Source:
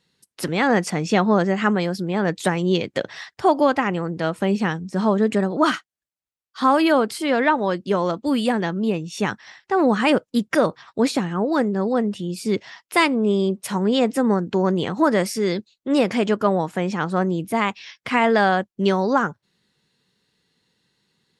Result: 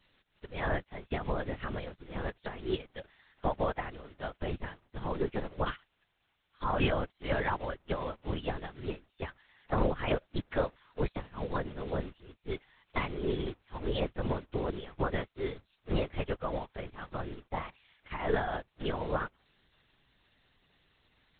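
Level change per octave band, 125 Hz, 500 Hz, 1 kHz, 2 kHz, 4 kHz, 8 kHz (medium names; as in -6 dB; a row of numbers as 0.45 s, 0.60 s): -10.0 dB, -14.0 dB, -15.0 dB, -15.0 dB, -15.0 dB, under -40 dB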